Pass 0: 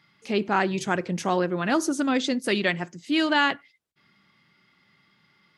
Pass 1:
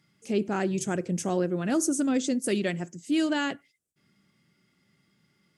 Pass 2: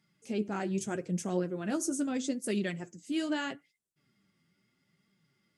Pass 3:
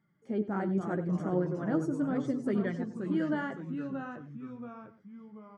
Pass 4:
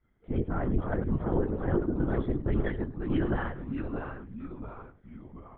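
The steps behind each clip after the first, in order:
graphic EQ 1/2/4/8 kHz -11/-6/-10/+9 dB
flange 0.79 Hz, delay 4.3 ms, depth 7.7 ms, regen +42%; trim -2 dB
Savitzky-Golay filter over 41 samples; delay 94 ms -15.5 dB; ever faster or slower copies 222 ms, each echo -2 st, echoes 3, each echo -6 dB; trim +1 dB
LPC vocoder at 8 kHz whisper; trim +2.5 dB

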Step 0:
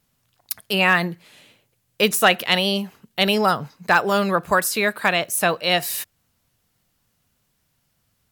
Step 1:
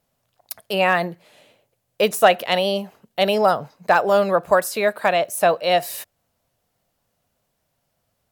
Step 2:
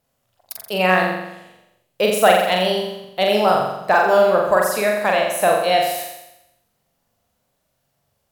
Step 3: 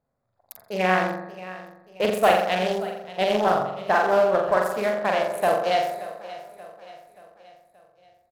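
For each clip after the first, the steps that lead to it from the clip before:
peaking EQ 620 Hz +12 dB 1.1 oct; trim -5 dB
flutter echo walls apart 7.4 m, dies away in 0.89 s; trim -1 dB
local Wiener filter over 15 samples; feedback delay 579 ms, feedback 49%, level -16.5 dB; loudspeaker Doppler distortion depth 0.23 ms; trim -4.5 dB

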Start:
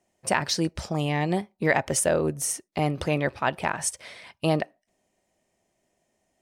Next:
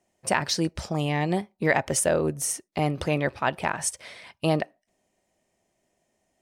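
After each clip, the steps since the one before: no audible change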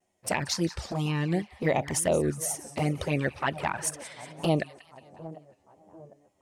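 two-band feedback delay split 1 kHz, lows 747 ms, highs 181 ms, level -16 dB; touch-sensitive flanger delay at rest 11.4 ms, full sweep at -18.5 dBFS; vibrato 2.1 Hz 72 cents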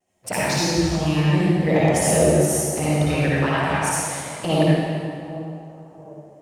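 reverberation RT60 2.0 s, pre-delay 50 ms, DRR -8 dB

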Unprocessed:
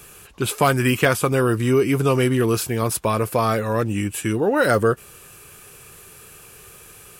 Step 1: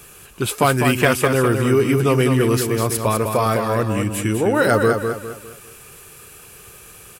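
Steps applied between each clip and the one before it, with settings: feedback delay 203 ms, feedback 37%, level -6 dB; trim +1 dB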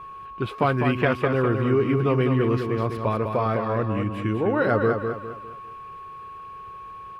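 whistle 1.1 kHz -31 dBFS; distance through air 350 m; trim -4 dB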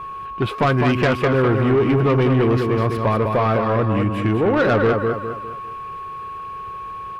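saturation -19.5 dBFS, distortion -13 dB; trim +8 dB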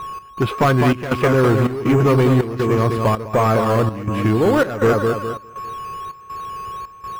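trance gate "x.xxx.xx" 81 bpm -12 dB; in parallel at -10 dB: decimation with a swept rate 9×, swing 60% 1.4 Hz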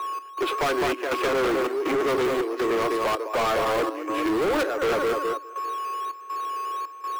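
steep high-pass 290 Hz 96 dB/octave; overload inside the chain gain 21 dB

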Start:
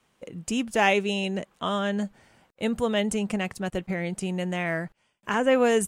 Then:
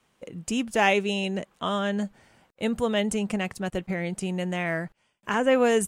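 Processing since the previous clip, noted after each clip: no audible change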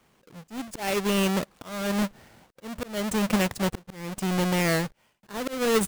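square wave that keeps the level; slow attack 461 ms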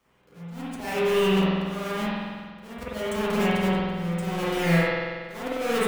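feedback comb 57 Hz, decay 0.2 s, harmonics odd, mix 80%; spring tank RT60 1.7 s, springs 47 ms, chirp 80 ms, DRR -9.5 dB; trim -1 dB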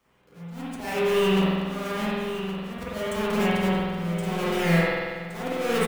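block-companded coder 7-bit; delay 1119 ms -10 dB

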